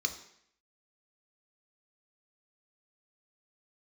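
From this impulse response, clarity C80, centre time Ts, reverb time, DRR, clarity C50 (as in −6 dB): 13.5 dB, 12 ms, 0.70 s, 4.0 dB, 10.5 dB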